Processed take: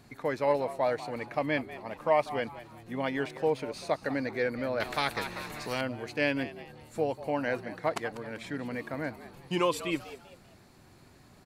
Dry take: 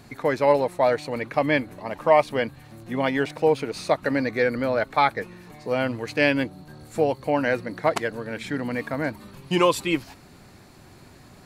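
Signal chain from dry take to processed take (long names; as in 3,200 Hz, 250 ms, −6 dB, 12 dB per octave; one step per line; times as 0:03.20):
echo with shifted repeats 194 ms, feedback 35%, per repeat +110 Hz, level −15 dB
0:04.80–0:05.81: every bin compressed towards the loudest bin 2 to 1
level −8 dB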